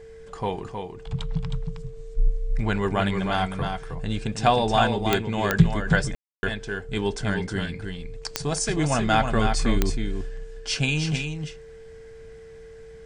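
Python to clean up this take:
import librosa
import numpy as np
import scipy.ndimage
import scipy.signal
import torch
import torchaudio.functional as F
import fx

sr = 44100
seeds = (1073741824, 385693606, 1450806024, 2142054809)

y = fx.fix_declick_ar(x, sr, threshold=10.0)
y = fx.notch(y, sr, hz=450.0, q=30.0)
y = fx.fix_ambience(y, sr, seeds[0], print_start_s=12.32, print_end_s=12.82, start_s=6.15, end_s=6.43)
y = fx.fix_echo_inverse(y, sr, delay_ms=315, level_db=-6.0)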